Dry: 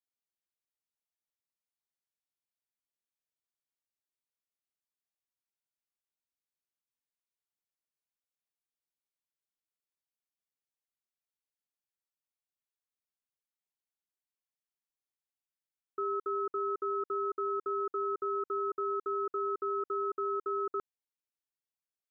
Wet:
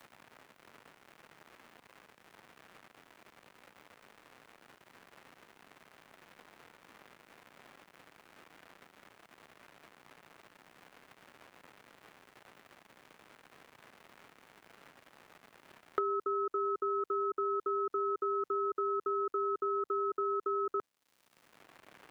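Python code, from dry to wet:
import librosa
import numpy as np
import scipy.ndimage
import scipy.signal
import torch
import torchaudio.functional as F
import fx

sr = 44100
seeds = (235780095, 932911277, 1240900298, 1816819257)

y = fx.dmg_crackle(x, sr, seeds[0], per_s=290.0, level_db=-65.0)
y = fx.band_squash(y, sr, depth_pct=100)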